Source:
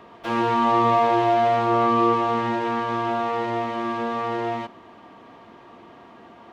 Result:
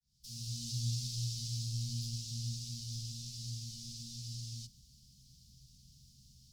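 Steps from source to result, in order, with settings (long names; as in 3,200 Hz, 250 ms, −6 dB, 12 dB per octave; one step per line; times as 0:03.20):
fade in at the beginning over 0.69 s
Chebyshev band-stop filter 120–4,900 Hz, order 4
parametric band 130 Hz +7.5 dB 0.26 octaves
phaser with its sweep stopped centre 400 Hz, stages 6
level +12 dB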